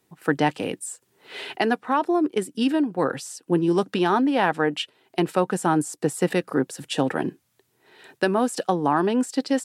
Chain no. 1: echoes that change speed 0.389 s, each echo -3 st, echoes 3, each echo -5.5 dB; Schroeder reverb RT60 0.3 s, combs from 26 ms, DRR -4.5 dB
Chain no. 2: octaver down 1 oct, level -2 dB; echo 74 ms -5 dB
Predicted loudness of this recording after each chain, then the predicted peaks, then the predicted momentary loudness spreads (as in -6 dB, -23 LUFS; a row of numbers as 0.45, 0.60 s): -17.5, -22.0 LUFS; -1.5, -6.5 dBFS; 8, 9 LU